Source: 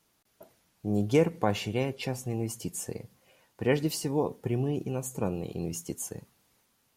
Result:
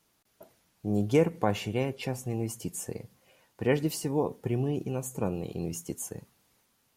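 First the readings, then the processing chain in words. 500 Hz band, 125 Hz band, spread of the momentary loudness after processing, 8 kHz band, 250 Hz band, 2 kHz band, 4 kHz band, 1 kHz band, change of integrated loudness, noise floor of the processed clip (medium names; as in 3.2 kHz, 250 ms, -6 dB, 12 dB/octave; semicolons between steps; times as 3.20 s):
0.0 dB, 0.0 dB, 12 LU, -1.0 dB, 0.0 dB, -0.5 dB, -2.5 dB, 0.0 dB, 0.0 dB, -71 dBFS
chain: dynamic bell 4.4 kHz, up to -4 dB, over -49 dBFS, Q 1.3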